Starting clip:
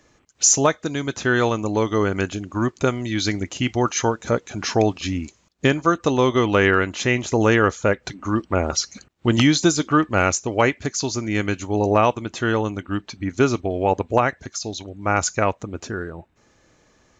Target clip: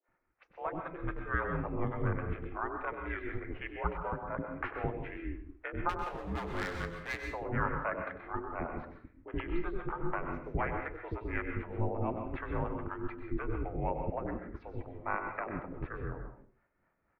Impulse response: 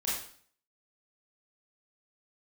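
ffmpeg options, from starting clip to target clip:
-filter_complex "[0:a]agate=range=-6dB:threshold=-46dB:ratio=16:detection=peak,dynaudnorm=framelen=240:gausssize=11:maxgain=11.5dB,alimiter=limit=-11.5dB:level=0:latency=1:release=234,highpass=frequency=230:width_type=q:width=0.5412,highpass=frequency=230:width_type=q:width=1.307,lowpass=frequency=2200:width_type=q:width=0.5176,lowpass=frequency=2200:width_type=q:width=0.7071,lowpass=frequency=2200:width_type=q:width=1.932,afreqshift=-130,aeval=exprs='val(0)*sin(2*PI*180*n/s)':channel_layout=same,asettb=1/sr,asplit=3[link_01][link_02][link_03];[link_01]atrim=end=5.894[link_04];[link_02]atrim=start=5.89:end=7.2,asetpts=PTS-STARTPTS,afade=type=in:duration=0.004:curve=qsin,afade=type=out:start_time=1.306:duration=0.004:curve=qsin,volume=24dB,asoftclip=hard,volume=-24dB[link_05];[link_03]atrim=start=7.196[link_06];[link_04][link_05]acrossfade=duration=0.004:curve1=hsin:curve2=qsin[link_07];[link_07][link_06]acrossfade=duration=0.004:curve1=qsin:curve2=hsin,acrossover=split=440[link_08][link_09];[link_08]aeval=exprs='val(0)*(1-1/2+1/2*cos(2*PI*4*n/s))':channel_layout=same[link_10];[link_09]aeval=exprs='val(0)*(1-1/2-1/2*cos(2*PI*4*n/s))':channel_layout=same[link_11];[link_10][link_11]amix=inputs=2:normalize=0,acrossover=split=470[link_12][link_13];[link_12]adelay=80[link_14];[link_14][link_13]amix=inputs=2:normalize=0,asplit=2[link_15][link_16];[1:a]atrim=start_sample=2205,asetrate=52920,aresample=44100,adelay=97[link_17];[link_16][link_17]afir=irnorm=-1:irlink=0,volume=-8.5dB[link_18];[link_15][link_18]amix=inputs=2:normalize=0,volume=-3dB"

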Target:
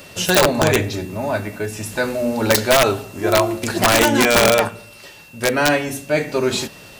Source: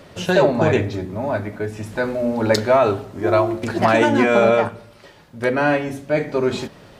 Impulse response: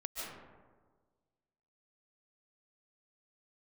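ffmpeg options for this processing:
-af "crystalizer=i=4:c=0,aeval=exprs='(mod(1.88*val(0)+1,2)-1)/1.88':channel_layout=same,aeval=exprs='val(0)+0.00631*sin(2*PI*2700*n/s)':channel_layout=same"

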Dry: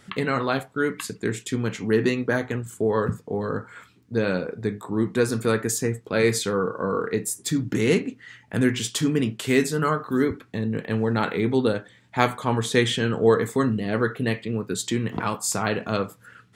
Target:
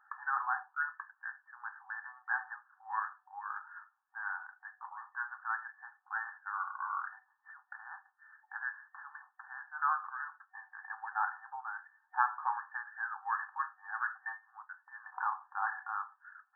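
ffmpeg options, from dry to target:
ffmpeg -i in.wav -af "afftfilt=real='re*between(b*sr/4096,750,1800)':imag='im*between(b*sr/4096,750,1800)':win_size=4096:overlap=0.75,volume=-5dB" out.wav

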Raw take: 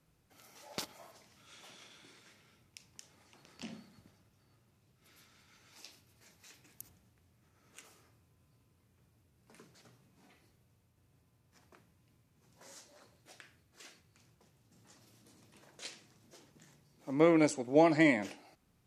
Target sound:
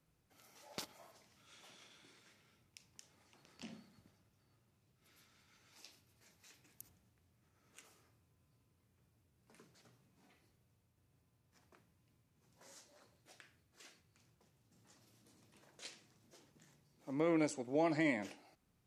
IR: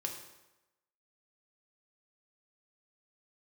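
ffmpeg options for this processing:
-af "alimiter=limit=-18.5dB:level=0:latency=1:release=107,volume=-5.5dB"

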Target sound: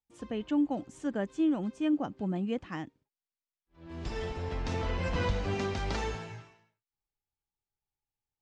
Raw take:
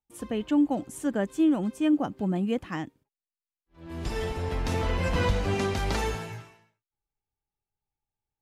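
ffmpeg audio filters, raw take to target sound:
ffmpeg -i in.wav -af "lowpass=frequency=6900:width=0.5412,lowpass=frequency=6900:width=1.3066,volume=-5dB" out.wav

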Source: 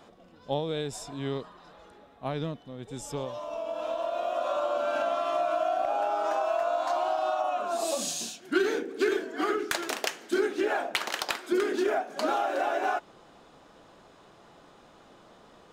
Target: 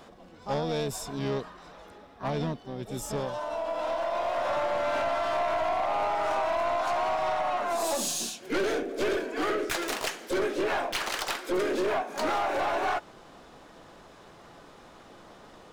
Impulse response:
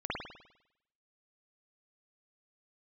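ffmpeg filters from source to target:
-filter_complex "[0:a]aeval=exprs='0.168*(cos(1*acos(clip(val(0)/0.168,-1,1)))-cos(1*PI/2))+0.0299*(cos(2*acos(clip(val(0)/0.168,-1,1)))-cos(2*PI/2))+0.0211*(cos(5*acos(clip(val(0)/0.168,-1,1)))-cos(5*PI/2))+0.00596*(cos(7*acos(clip(val(0)/0.168,-1,1)))-cos(7*PI/2))':channel_layout=same,lowshelf=frequency=68:gain=6,asplit=3[link_01][link_02][link_03];[link_02]asetrate=52444,aresample=44100,atempo=0.840896,volume=-16dB[link_04];[link_03]asetrate=66075,aresample=44100,atempo=0.66742,volume=-7dB[link_05];[link_01][link_04][link_05]amix=inputs=3:normalize=0,asoftclip=type=tanh:threshold=-22.5dB"

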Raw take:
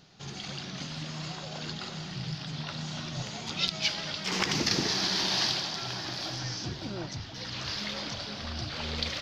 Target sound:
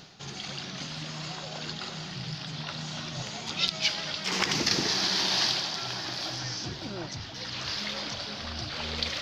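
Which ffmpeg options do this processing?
ffmpeg -i in.wav -af "lowshelf=frequency=330:gain=-4.5,areverse,acompressor=mode=upward:threshold=-37dB:ratio=2.5,areverse,volume=2dB" out.wav

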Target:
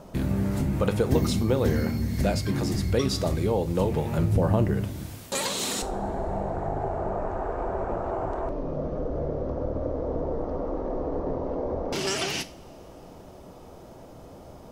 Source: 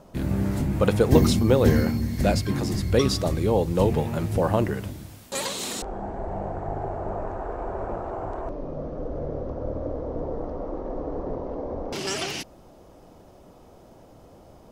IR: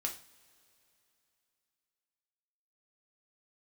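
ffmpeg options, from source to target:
-filter_complex "[0:a]asettb=1/sr,asplit=3[link_01][link_02][link_03];[link_01]atrim=end=4.184[link_04];[link_02]atrim=start=4.18:end=4.85,asetpts=PTS-STARTPTS,afade=type=in:duration=0.004:curve=qsin,afade=type=out:start_time=0.666:duration=0.004:curve=qsin,lowshelf=frequency=380:gain=9.5[link_05];[link_03]atrim=start=4.846[link_06];[link_04][link_05]acrossfade=duration=0.004:curve1=hsin:curve2=qsin[link_07];[link_07][link_06]acrossfade=duration=0.004:curve1=qsin:curve2=hsin,acompressor=threshold=-31dB:ratio=2,asplit=2[link_08][link_09];[1:a]atrim=start_sample=2205[link_10];[link_09][link_10]afir=irnorm=-1:irlink=0,volume=-3.5dB[link_11];[link_08][link_11]amix=inputs=2:normalize=0"

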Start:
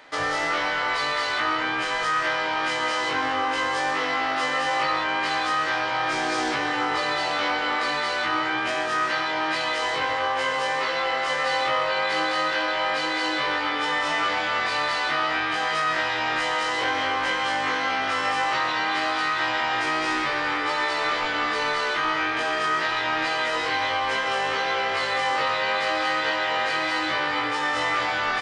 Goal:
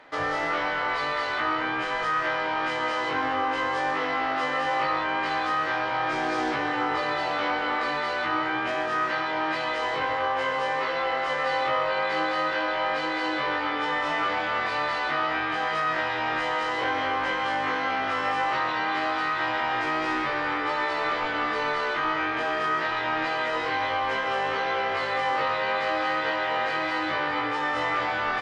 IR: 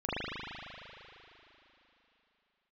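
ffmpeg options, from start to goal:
-af "lowpass=frequency=1800:poles=1"

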